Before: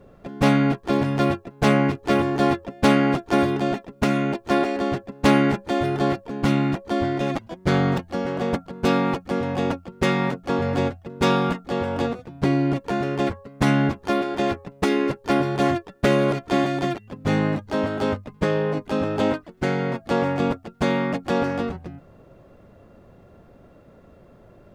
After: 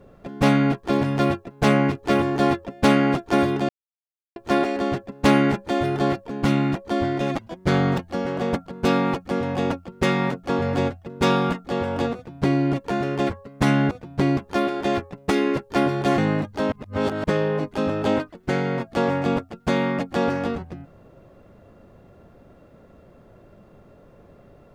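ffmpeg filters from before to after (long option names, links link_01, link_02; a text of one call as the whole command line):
ffmpeg -i in.wav -filter_complex "[0:a]asplit=8[link_01][link_02][link_03][link_04][link_05][link_06][link_07][link_08];[link_01]atrim=end=3.69,asetpts=PTS-STARTPTS,afade=type=out:start_time=3.686:duration=0.004:curve=hsin[link_09];[link_02]atrim=start=3.69:end=4.36,asetpts=PTS-STARTPTS,volume=0[link_10];[link_03]atrim=start=4.36:end=13.912,asetpts=PTS-STARTPTS,afade=type=in:duration=0.004:curve=hsin[link_11];[link_04]atrim=start=12.148:end=12.612[link_12];[link_05]atrim=start=13.908:end=15.722[link_13];[link_06]atrim=start=17.318:end=17.862[link_14];[link_07]atrim=start=17.858:end=18.382,asetpts=PTS-STARTPTS,areverse[link_15];[link_08]atrim=start=18.378[link_16];[link_09][link_10][link_11]concat=n=3:v=0:a=1[link_17];[link_17][link_12]acrossfade=duration=0.004:curve1=hsin:curve2=hsin[link_18];[link_18][link_13]acrossfade=duration=0.004:curve1=hsin:curve2=hsin[link_19];[link_19][link_14]acrossfade=duration=0.004:curve1=hsin:curve2=hsin[link_20];[link_20][link_15]acrossfade=duration=0.004:curve1=hsin:curve2=hsin[link_21];[link_21][link_16]acrossfade=duration=0.004:curve1=hsin:curve2=hsin" out.wav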